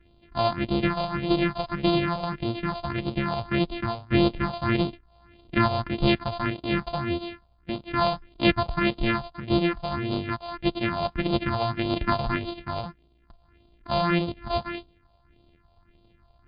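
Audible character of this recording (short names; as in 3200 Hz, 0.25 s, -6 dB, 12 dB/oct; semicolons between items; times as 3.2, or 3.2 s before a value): a buzz of ramps at a fixed pitch in blocks of 128 samples; phasing stages 4, 1.7 Hz, lowest notch 300–1800 Hz; MP3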